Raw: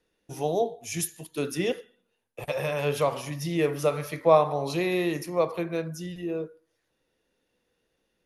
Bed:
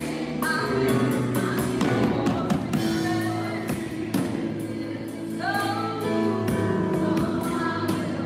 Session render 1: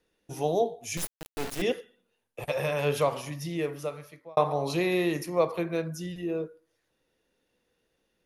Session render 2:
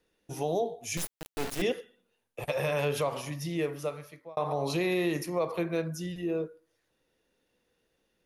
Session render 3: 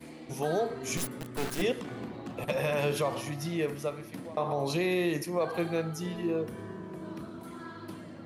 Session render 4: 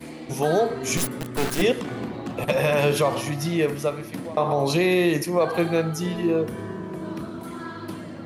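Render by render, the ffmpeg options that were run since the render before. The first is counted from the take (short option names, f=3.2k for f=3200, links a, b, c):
-filter_complex "[0:a]asettb=1/sr,asplit=3[a][b][c];[a]atrim=end=0.974[d];[b]atrim=start=0.97:end=1.62,asetpts=PTS-STARTPTS,afade=t=in:d=0.004:c=qsin,afade=t=out:st=0.646:d=0.004:c=qsin,acrusher=bits=3:dc=4:mix=0:aa=0.000001[e];[c]atrim=start=1.616[f];[d][e]acrossfade=d=0.004:c1=hsin:c2=qsin[g];[g][f]acrossfade=d=0.004:c1=qsin:c2=hsin,asplit=2[h][i];[h]atrim=end=4.37,asetpts=PTS-STARTPTS,afade=t=out:st=2.95:d=1.42[j];[i]atrim=start=4.37,asetpts=PTS-STARTPTS,afade=t=in:d=0.004:c=hsin[k];[j][k]concat=n=2:v=0:a=1"
-af "alimiter=limit=-19.5dB:level=0:latency=1:release=89"
-filter_complex "[1:a]volume=-17.5dB[a];[0:a][a]amix=inputs=2:normalize=0"
-af "volume=8.5dB"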